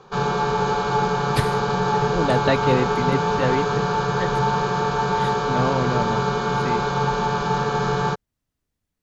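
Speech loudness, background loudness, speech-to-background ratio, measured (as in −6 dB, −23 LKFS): −26.5 LKFS, −22.0 LKFS, −4.5 dB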